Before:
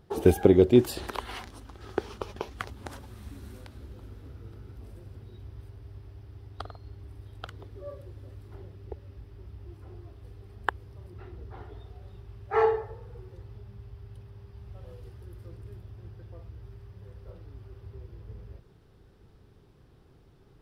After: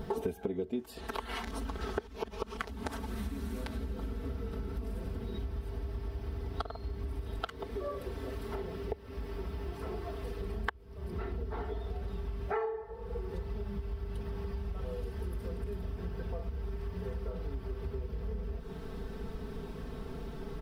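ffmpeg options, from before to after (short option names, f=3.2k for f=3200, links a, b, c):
-filter_complex "[0:a]asettb=1/sr,asplit=3[a][b][c];[a]atrim=end=7.394[d];[b]atrim=start=7.39:end=10.41,asetpts=PTS-STARTPTS,afade=t=in:d=0.004:c=qsin,afade=t=out:st=3.016:d=0.004:c=qsin,lowshelf=f=220:g=-9[e];[c]atrim=start=10.406[f];[d][e]acrossfade=d=0.004:c1=hsin:c2=qsin[g];[g][f]acrossfade=d=0.004:c1=qsin:c2=hsin,asplit=3[h][i][j];[h]atrim=end=2.072[k];[i]atrim=start=2.068:end=2.572,asetpts=PTS-STARTPTS,areverse[l];[j]atrim=start=2.568[m];[k][l]acrossfade=d=0.004:c1=hsin:c2=hsin[n];[n][m]acrossfade=d=0.004:c1=hsin:c2=hsin,equalizer=f=7.8k:t=o:w=2.8:g=-4.5,aecho=1:1:4.5:1,acompressor=threshold=-49dB:ratio=10,volume=15.5dB"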